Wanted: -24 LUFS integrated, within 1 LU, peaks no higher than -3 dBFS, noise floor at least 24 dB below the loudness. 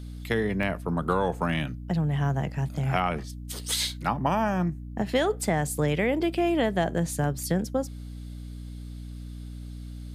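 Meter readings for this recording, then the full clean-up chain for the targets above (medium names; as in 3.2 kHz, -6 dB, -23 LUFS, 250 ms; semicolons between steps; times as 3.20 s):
dropouts 3; longest dropout 1.3 ms; hum 60 Hz; highest harmonic 300 Hz; hum level -36 dBFS; loudness -27.5 LUFS; peak level -9.5 dBFS; loudness target -24.0 LUFS
-> interpolate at 0.63/3.89/7.24 s, 1.3 ms; hum notches 60/120/180/240/300 Hz; trim +3.5 dB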